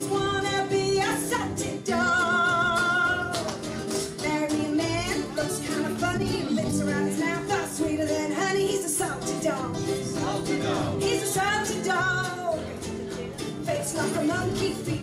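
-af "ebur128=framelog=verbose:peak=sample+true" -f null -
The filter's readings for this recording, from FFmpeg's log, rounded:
Integrated loudness:
  I:         -26.3 LUFS
  Threshold: -36.3 LUFS
Loudness range:
  LRA:         3.2 LU
  Threshold: -46.3 LUFS
  LRA low:   -27.5 LUFS
  LRA high:  -24.4 LUFS
Sample peak:
  Peak:      -12.8 dBFS
True peak:
  Peak:      -12.8 dBFS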